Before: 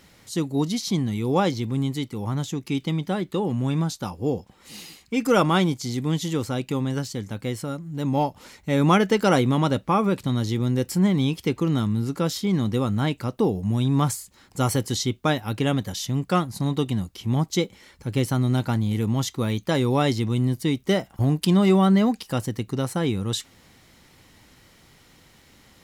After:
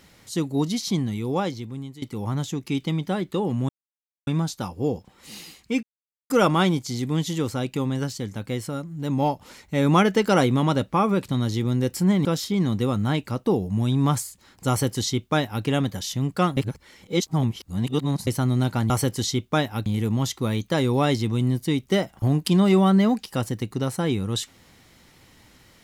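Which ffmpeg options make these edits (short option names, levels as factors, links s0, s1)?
-filter_complex "[0:a]asplit=9[s0][s1][s2][s3][s4][s5][s6][s7][s8];[s0]atrim=end=2.02,asetpts=PTS-STARTPTS,afade=t=out:st=0.91:d=1.11:silence=0.158489[s9];[s1]atrim=start=2.02:end=3.69,asetpts=PTS-STARTPTS,afade=t=in:d=0.004:c=hsin:silence=0.158489,afade=t=out:st=1.666:d=0.004:c=hsin,apad=pad_dur=0.58[s10];[s2]atrim=start=3.69:end=5.25,asetpts=PTS-STARTPTS,afade=t=in:d=0.004:c=hsin,afade=t=out:st=1.556:d=0.004:c=hsin,apad=pad_dur=0.47[s11];[s3]atrim=start=5.25:end=11.202,asetpts=PTS-STARTPTS,afade=t=in:d=0.004:c=hsin[s12];[s4]atrim=start=12.178:end=16.502[s13];[s5]atrim=start=16.498:end=18.202,asetpts=PTS-STARTPTS,areverse[s14];[s6]atrim=start=18.198:end=18.832[s15];[s7]atrim=start=14.618:end=15.582[s16];[s8]atrim=start=18.828[s17];[s9][s10][s11][s12]concat=n=4:v=0:a=1[s18];[s18][s13]acrossfade=d=0.004:c1=hsin:c2=hsin[s19];[s19][s14]acrossfade=d=0.004:c1=hsin:c2=hsin[s20];[s20][s15]acrossfade=d=0.004:c1=hsin:c2=hsin[s21];[s21][s16]acrossfade=d=0.004:c1=hsin:c2=hsin[s22];[s22][s17]acrossfade=d=0.004:c1=hsin:c2=hsin"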